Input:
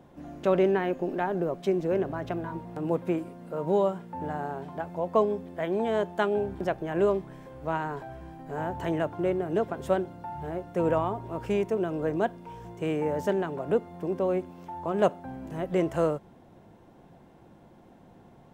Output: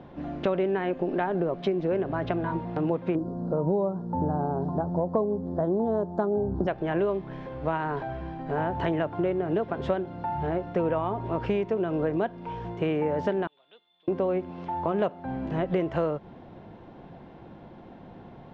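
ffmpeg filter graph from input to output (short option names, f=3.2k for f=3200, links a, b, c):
-filter_complex "[0:a]asettb=1/sr,asplit=3[a][b][c];[a]atrim=end=3.154[d];[b]atrim=start=3.15:end=6.67,asetpts=PTS-STARTPTS,afade=t=in:d=0.004:c=qsin,afade=t=out:st=3.516:d=0.004:c=qsin,asuperstop=centerf=2500:order=4:qfactor=0.58,lowshelf=f=320:g=8.5[e];[c]atrim=start=6.666[f];[d][e]acrossfade=d=0.004:c1=hsin:c2=qsin[g];[g][f]acrossfade=d=0.004:c1=qsin:c2=hsin,asettb=1/sr,asplit=3[h][i][j];[h]atrim=end=13.474[k];[i]atrim=start=13.47:end=14.08,asetpts=PTS-STARTPTS,afade=t=in:d=0.004:c=qsin,afade=t=out:st=0.606:d=0.004:c=qsin,bandpass=f=3.5k:t=q:w=14,acrusher=bits=8:mode=log:mix=0:aa=0.000001[l];[j]atrim=start=14.076[m];[k][l]acrossfade=d=0.004:c1=hsin:c2=qsin[n];[n][m]acrossfade=d=0.004:c1=qsin:c2=hsin,lowpass=f=4.2k:w=0.5412,lowpass=f=4.2k:w=1.3066,acompressor=threshold=-31dB:ratio=5,volume=7.5dB"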